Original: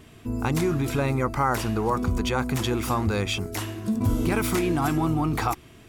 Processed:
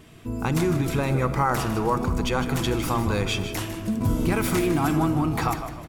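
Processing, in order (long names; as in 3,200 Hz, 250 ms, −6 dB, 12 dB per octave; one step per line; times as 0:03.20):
echo with shifted repeats 154 ms, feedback 39%, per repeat −72 Hz, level −10.5 dB
rectangular room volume 3,300 cubic metres, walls mixed, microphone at 0.66 metres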